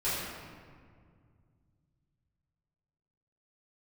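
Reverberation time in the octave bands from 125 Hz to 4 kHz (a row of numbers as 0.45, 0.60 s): 3.8, 2.9, 2.1, 1.9, 1.6, 1.1 s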